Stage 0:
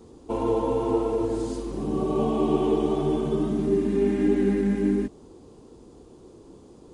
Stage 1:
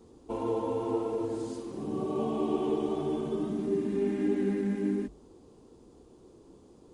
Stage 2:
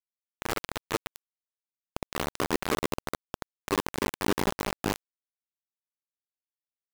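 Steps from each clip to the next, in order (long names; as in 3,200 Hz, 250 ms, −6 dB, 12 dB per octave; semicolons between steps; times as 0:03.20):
mains-hum notches 50/100/150 Hz; level −6.5 dB
bit reduction 4 bits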